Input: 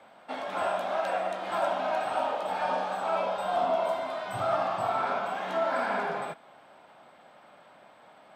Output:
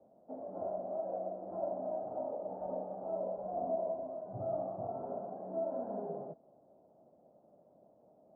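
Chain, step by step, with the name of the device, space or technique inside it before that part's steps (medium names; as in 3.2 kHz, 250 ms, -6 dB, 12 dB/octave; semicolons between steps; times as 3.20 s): under water (low-pass 550 Hz 24 dB/octave; peaking EQ 650 Hz +4.5 dB 0.28 oct); trim -4 dB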